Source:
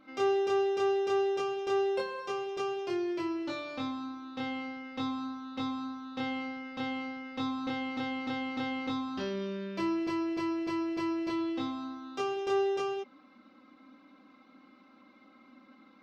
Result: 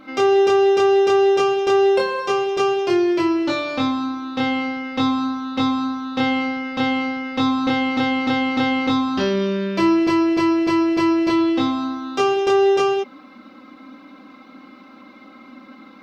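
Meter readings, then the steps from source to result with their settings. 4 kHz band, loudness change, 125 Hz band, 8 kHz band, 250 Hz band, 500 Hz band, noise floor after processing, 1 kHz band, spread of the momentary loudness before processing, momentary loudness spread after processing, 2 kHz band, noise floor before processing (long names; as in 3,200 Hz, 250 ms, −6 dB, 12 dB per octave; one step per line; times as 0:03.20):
+14.5 dB, +14.5 dB, +15.0 dB, can't be measured, +15.0 dB, +14.0 dB, −45 dBFS, +14.5 dB, 10 LU, 8 LU, +14.5 dB, −60 dBFS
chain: boost into a limiter +22.5 dB
level −7.5 dB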